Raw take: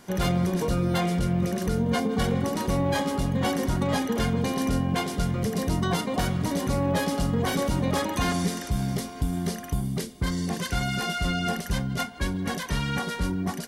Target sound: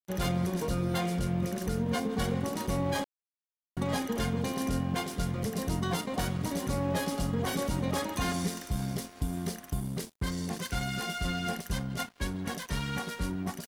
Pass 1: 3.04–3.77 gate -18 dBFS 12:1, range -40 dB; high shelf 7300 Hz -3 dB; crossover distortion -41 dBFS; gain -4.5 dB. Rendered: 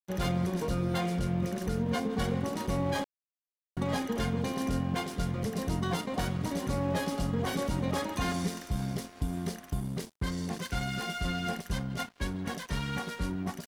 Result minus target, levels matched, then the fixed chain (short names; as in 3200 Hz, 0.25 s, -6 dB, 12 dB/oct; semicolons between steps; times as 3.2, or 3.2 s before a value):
8000 Hz band -3.5 dB
3.04–3.77 gate -18 dBFS 12:1, range -40 dB; high shelf 7300 Hz +4 dB; crossover distortion -41 dBFS; gain -4.5 dB